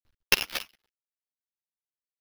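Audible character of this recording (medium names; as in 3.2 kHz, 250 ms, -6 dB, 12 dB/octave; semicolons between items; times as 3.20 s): a quantiser's noise floor 12-bit, dither none; tremolo triangle 3.9 Hz, depth 90%; aliases and images of a low sample rate 8.1 kHz, jitter 0%; a shimmering, thickened sound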